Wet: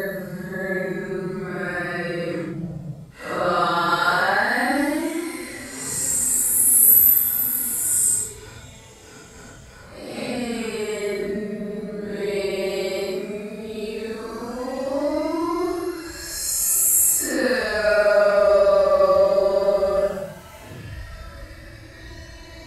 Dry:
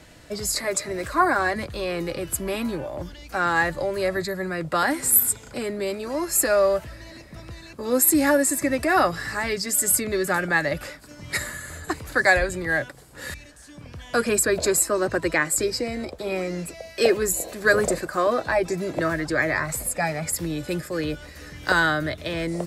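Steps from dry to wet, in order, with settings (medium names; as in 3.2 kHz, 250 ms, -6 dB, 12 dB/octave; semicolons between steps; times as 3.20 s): Paulstretch 8.2×, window 0.05 s, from 4.32 s; trim +1 dB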